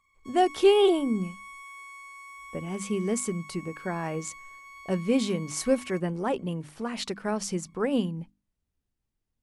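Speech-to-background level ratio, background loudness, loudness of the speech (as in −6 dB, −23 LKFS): 17.0 dB, −45.0 LKFS, −28.0 LKFS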